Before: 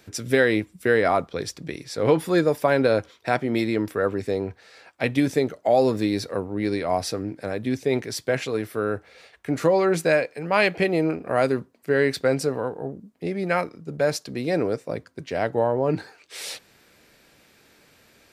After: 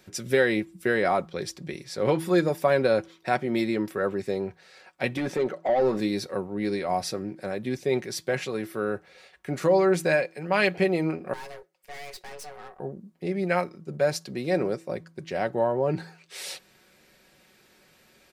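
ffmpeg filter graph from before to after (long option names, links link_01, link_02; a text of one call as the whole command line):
ffmpeg -i in.wav -filter_complex "[0:a]asettb=1/sr,asplit=3[link_01][link_02][link_03];[link_01]atrim=end=5.174[link_04];[link_02]atrim=start=5.17:end=6,asetpts=PTS-STARTPTS,afade=type=in:duration=0.004:curve=qsin,afade=type=out:start_time=0.826:duration=0.004:curve=qsin,acompressor=threshold=-21dB:ratio=2:attack=3.2:release=140:knee=1:detection=peak,asplit=2[link_05][link_06];[link_06]highpass=frequency=720:poles=1,volume=18dB,asoftclip=type=tanh:threshold=-11.5dB[link_07];[link_05][link_07]amix=inputs=2:normalize=0,lowpass=frequency=1100:poles=1,volume=-6dB[link_08];[link_03]atrim=start=5.996[link_09];[link_04][link_08]acrossfade=duration=0.004:curve1=hsin:curve2=qsin[link_10];[link_10][link_09]acrossfade=duration=0.004:curve1=qsin:curve2=hsin,asettb=1/sr,asplit=3[link_11][link_12][link_13];[link_11]atrim=end=11.334[link_14];[link_12]atrim=start=11.33:end=12.8,asetpts=PTS-STARTPTS,afade=type=in:duration=0.004:curve=qsin,afade=type=out:start_time=1.466:duration=0.004:curve=qsin,equalizer=frequency=390:width_type=o:width=2.5:gain=-12.5,afreqshift=290,aeval=exprs='(tanh(63.1*val(0)+0.65)-tanh(0.65))/63.1':channel_layout=same[link_15];[link_13]atrim=start=12.796[link_16];[link_14][link_15]acrossfade=duration=0.004:curve1=hsin:curve2=qsin[link_17];[link_17][link_16]acrossfade=duration=0.004:curve1=qsin:curve2=hsin,aecho=1:1:5.4:0.48,bandreject=frequency=165.1:width_type=h:width=4,bandreject=frequency=330.2:width_type=h:width=4,volume=-3.5dB" out.wav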